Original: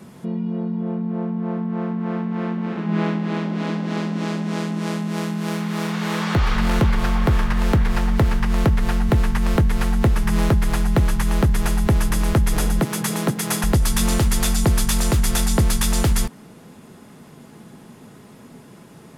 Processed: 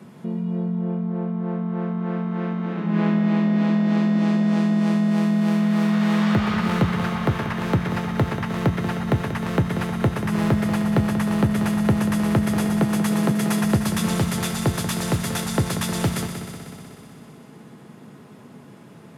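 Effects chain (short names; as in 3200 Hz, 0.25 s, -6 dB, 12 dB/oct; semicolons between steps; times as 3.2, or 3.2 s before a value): HPF 100 Hz 24 dB/oct; tone controls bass +1 dB, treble -6 dB; on a send: multi-head echo 62 ms, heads second and third, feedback 68%, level -10.5 dB; on the sum: gain -2 dB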